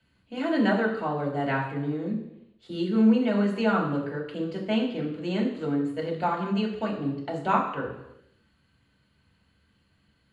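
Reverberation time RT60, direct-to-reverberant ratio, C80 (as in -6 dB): 0.85 s, -3.0 dB, 8.5 dB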